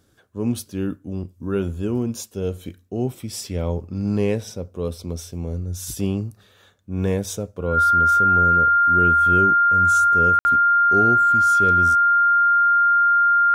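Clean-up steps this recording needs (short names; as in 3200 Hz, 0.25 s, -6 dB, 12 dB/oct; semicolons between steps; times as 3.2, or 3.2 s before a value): notch 1400 Hz, Q 30; room tone fill 10.39–10.45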